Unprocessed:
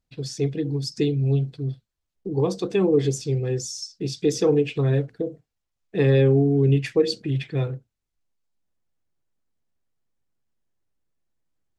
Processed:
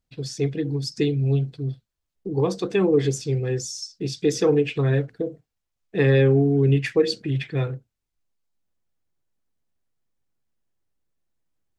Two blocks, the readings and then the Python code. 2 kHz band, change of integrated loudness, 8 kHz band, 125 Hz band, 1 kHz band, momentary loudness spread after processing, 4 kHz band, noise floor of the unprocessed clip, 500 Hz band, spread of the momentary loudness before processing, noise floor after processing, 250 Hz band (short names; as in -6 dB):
+4.5 dB, +0.5 dB, 0.0 dB, 0.0 dB, +2.0 dB, 13 LU, +0.5 dB, -82 dBFS, +0.5 dB, 13 LU, -81 dBFS, 0.0 dB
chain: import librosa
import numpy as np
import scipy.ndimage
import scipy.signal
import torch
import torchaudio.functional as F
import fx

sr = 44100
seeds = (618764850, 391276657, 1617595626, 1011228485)

y = fx.dynamic_eq(x, sr, hz=1700.0, q=1.2, threshold_db=-44.0, ratio=4.0, max_db=6)